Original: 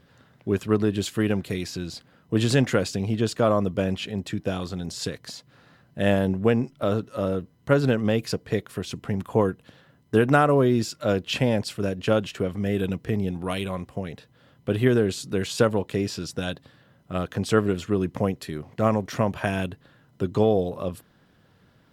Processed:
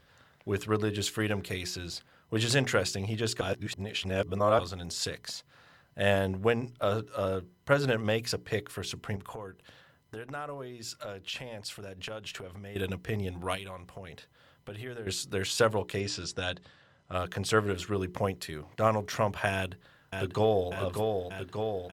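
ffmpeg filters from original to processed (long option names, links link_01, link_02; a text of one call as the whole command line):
ffmpeg -i in.wav -filter_complex "[0:a]asettb=1/sr,asplit=3[link_01][link_02][link_03];[link_01]atrim=end=9.164[link_04];[link_02]atrim=start=9.16:end=12.76,asetpts=PTS-STARTPTS,afade=type=in:duration=0.004:curve=qsin,afade=type=out:start_time=3.596:duration=0.004:curve=qsin,acompressor=threshold=-34dB:ratio=4:attack=3.2:release=140:knee=1:detection=peak[link_05];[link_03]atrim=start=12.756[link_06];[link_04][link_05]acrossfade=duration=0.004:curve1=hsin:curve2=qsin[link_07];[link_07][link_06]acrossfade=duration=0.004:curve1=qsin:curve2=hsin,asettb=1/sr,asplit=3[link_08][link_09][link_10];[link_08]atrim=end=13.554[link_11];[link_09]atrim=start=13.55:end=15.07,asetpts=PTS-STARTPTS,afade=type=in:duration=0.004:curve=qsin,afade=type=out:start_time=1.516:duration=0.004:curve=qsin,acompressor=threshold=-34dB:ratio=3:attack=3.2:release=140:knee=1:detection=peak[link_12];[link_10]atrim=start=15.066[link_13];[link_11][link_12]acrossfade=duration=0.004:curve1=hsin:curve2=qsin[link_14];[link_14][link_13]acrossfade=duration=0.004:curve1=qsin:curve2=hsin,asettb=1/sr,asplit=3[link_15][link_16][link_17];[link_15]atrim=end=16.004[link_18];[link_16]atrim=start=16:end=17.14,asetpts=PTS-STARTPTS,afade=type=in:duration=0.004:curve=qsin,afade=type=out:start_time=1.136:duration=0.004:curve=qsin,lowpass=frequency=8300:width=0.5412,lowpass=frequency=8300:width=1.3066[link_19];[link_17]atrim=start=17.136[link_20];[link_18][link_19]acrossfade=duration=0.004:curve1=hsin:curve2=qsin[link_21];[link_21][link_20]acrossfade=duration=0.004:curve1=qsin:curve2=hsin,asplit=2[link_22][link_23];[link_23]afade=type=in:start_time=19.53:duration=0.01,afade=type=out:start_time=20.7:duration=0.01,aecho=0:1:590|1180|1770|2360|2950|3540|4130|4720|5310|5900|6490|7080:0.595662|0.446747|0.33506|0.251295|0.188471|0.141353|0.106015|0.0795113|0.0596335|0.0447251|0.0335438|0.0251579[link_24];[link_22][link_24]amix=inputs=2:normalize=0,asplit=3[link_25][link_26][link_27];[link_25]atrim=end=3.412[link_28];[link_26]atrim=start=3.408:end=4.592,asetpts=PTS-STARTPTS,areverse[link_29];[link_27]atrim=start=4.588[link_30];[link_28][link_29]acrossfade=duration=0.004:curve1=hsin:curve2=hsin[link_31];[link_31][link_30]acrossfade=duration=0.004:curve1=hsin:curve2=hsin,equalizer=frequency=220:width_type=o:width=2:gain=-10.5,bandreject=frequency=60:width_type=h:width=6,bandreject=frequency=120:width_type=h:width=6,bandreject=frequency=180:width_type=h:width=6,bandreject=frequency=240:width_type=h:width=6,bandreject=frequency=300:width_type=h:width=6,bandreject=frequency=360:width_type=h:width=6,bandreject=frequency=420:width_type=h:width=6" out.wav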